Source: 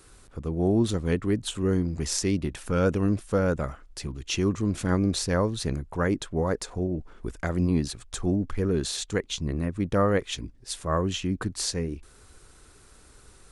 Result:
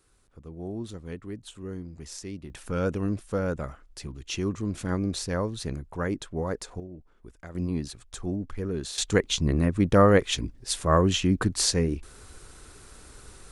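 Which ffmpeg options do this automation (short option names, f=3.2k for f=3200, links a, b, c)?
-af "asetnsamples=n=441:p=0,asendcmd='2.5 volume volume -4dB;6.8 volume volume -14dB;7.55 volume volume -5.5dB;8.98 volume volume 5dB',volume=-12.5dB"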